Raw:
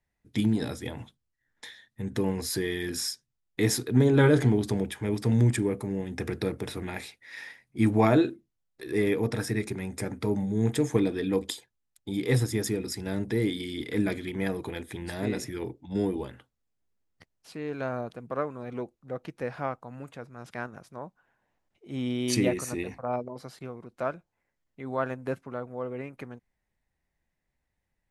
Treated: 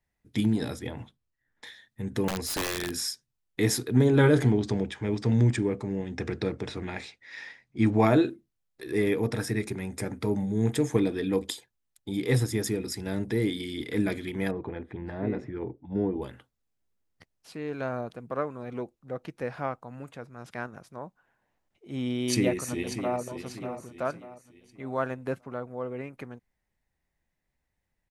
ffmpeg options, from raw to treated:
ffmpeg -i in.wav -filter_complex "[0:a]asettb=1/sr,asplit=3[link_01][link_02][link_03];[link_01]atrim=end=0.794[link_04];[link_02]atrim=start=0.79:end=1.67,asetpts=PTS-STARTPTS,afade=type=in:duration=0.004:curve=qsin,afade=type=out:start_time=0.876:duration=0.004:curve=qsin,aemphasis=mode=reproduction:type=cd[link_05];[link_03]atrim=start=1.666[link_06];[link_04][link_05]acrossfade=duration=0.004:curve1=hsin:curve2=qsin[link_07];[link_07][link_06]acrossfade=duration=0.004:curve1=qsin:curve2=hsin,asettb=1/sr,asplit=3[link_08][link_09][link_10];[link_08]atrim=end=2.284[link_11];[link_09]atrim=start=2.28:end=2.91,asetpts=PTS-STARTPTS,afade=type=in:duration=0.004:curve=qsin,afade=type=out:start_time=0.626:duration=0.004:curve=qsin,aeval=exprs='(mod(15*val(0)+1,2)-1)/15':channel_layout=same[link_12];[link_10]atrim=start=2.906[link_13];[link_11][link_12]acrossfade=duration=0.004:curve1=hsin:curve2=qsin[link_14];[link_14][link_13]acrossfade=duration=0.004:curve1=qsin:curve2=hsin,asettb=1/sr,asplit=3[link_15][link_16][link_17];[link_15]atrim=end=4.514[link_18];[link_16]atrim=start=4.51:end=8,asetpts=PTS-STARTPTS,afade=type=in:duration=0.004:curve=qsin,afade=type=out:start_time=3.486:duration=0.004:curve=qsin,lowpass=frequency=7100:width=0.5412,lowpass=frequency=7100:width=1.3066[link_19];[link_17]atrim=start=7.996[link_20];[link_18][link_19]acrossfade=duration=0.004:curve1=hsin:curve2=qsin[link_21];[link_21][link_20]acrossfade=duration=0.004:curve1=qsin:curve2=hsin,asettb=1/sr,asplit=3[link_22][link_23][link_24];[link_22]atrim=end=14.514[link_25];[link_23]atrim=start=14.51:end=16.22,asetpts=PTS-STARTPTS,afade=type=in:duration=0.004:curve=qsin,afade=type=out:start_time=1.706:duration=0.004:curve=qsin,lowpass=1400[link_26];[link_24]atrim=start=16.216[link_27];[link_25][link_26]acrossfade=duration=0.004:curve1=hsin:curve2=qsin[link_28];[link_28][link_27]acrossfade=duration=0.004:curve1=qsin:curve2=hsin,asplit=2[link_29][link_30];[link_30]afade=type=in:start_time=22.09:duration=0.01,afade=type=out:start_time=23.2:duration=0.01,aecho=0:1:590|1180|1770|2360:0.334965|0.133986|0.0535945|0.0214378[link_31];[link_29][link_31]amix=inputs=2:normalize=0" out.wav

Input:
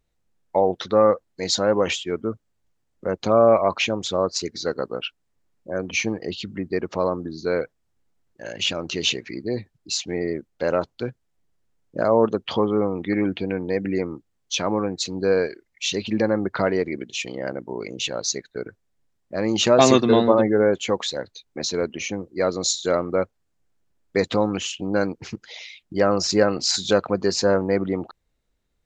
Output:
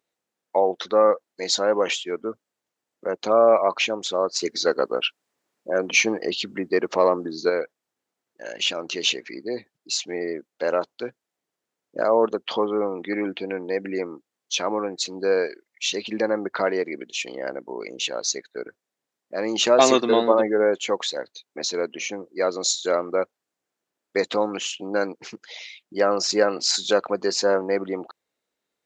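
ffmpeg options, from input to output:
ffmpeg -i in.wav -filter_complex "[0:a]asettb=1/sr,asplit=3[link_01][link_02][link_03];[link_01]atrim=end=4.424[link_04];[link_02]atrim=start=4.42:end=7.5,asetpts=PTS-STARTPTS,afade=type=in:duration=0.004:curve=qsin,afade=type=out:start_time=3.076:duration=0.004:curve=qsin,acontrast=48[link_05];[link_03]atrim=start=7.496[link_06];[link_04][link_05]acrossfade=duration=0.004:curve1=hsin:curve2=qsin[link_07];[link_07][link_06]acrossfade=duration=0.004:curve1=qsin:curve2=hsin,highpass=340" out.wav

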